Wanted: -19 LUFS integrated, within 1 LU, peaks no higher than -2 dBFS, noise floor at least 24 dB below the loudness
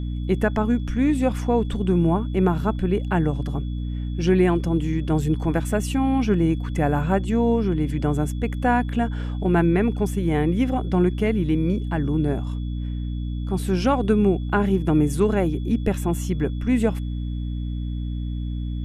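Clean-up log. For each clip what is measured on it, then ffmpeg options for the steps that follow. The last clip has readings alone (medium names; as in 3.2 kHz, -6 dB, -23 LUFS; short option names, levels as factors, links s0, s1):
hum 60 Hz; highest harmonic 300 Hz; hum level -25 dBFS; steady tone 3.4 kHz; tone level -51 dBFS; loudness -23.0 LUFS; peak level -6.5 dBFS; loudness target -19.0 LUFS
-> -af "bandreject=f=60:t=h:w=4,bandreject=f=120:t=h:w=4,bandreject=f=180:t=h:w=4,bandreject=f=240:t=h:w=4,bandreject=f=300:t=h:w=4"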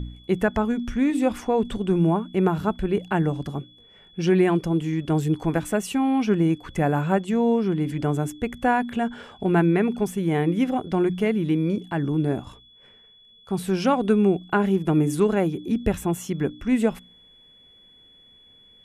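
hum not found; steady tone 3.4 kHz; tone level -51 dBFS
-> -af "bandreject=f=3400:w=30"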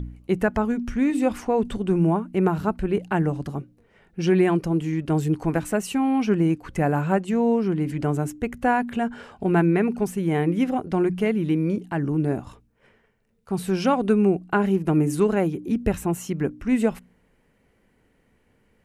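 steady tone not found; loudness -23.5 LUFS; peak level -7.5 dBFS; loudness target -19.0 LUFS
-> -af "volume=1.68"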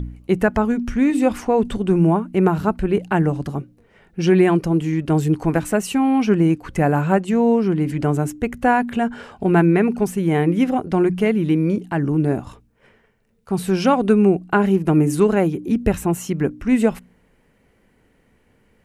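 loudness -19.0 LUFS; peak level -3.0 dBFS; noise floor -60 dBFS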